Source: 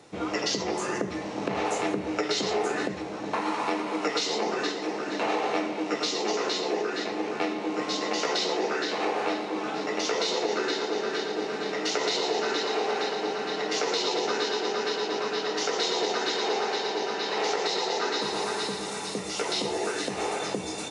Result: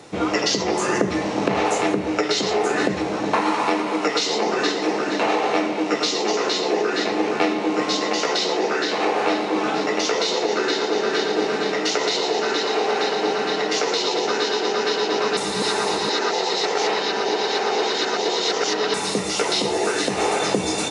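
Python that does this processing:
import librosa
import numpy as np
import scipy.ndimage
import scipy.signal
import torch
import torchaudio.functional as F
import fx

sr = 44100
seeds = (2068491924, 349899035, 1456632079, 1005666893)

y = fx.edit(x, sr, fx.reverse_span(start_s=15.37, length_s=3.57), tone=tone)
y = fx.rider(y, sr, range_db=10, speed_s=0.5)
y = F.gain(torch.from_numpy(y), 7.0).numpy()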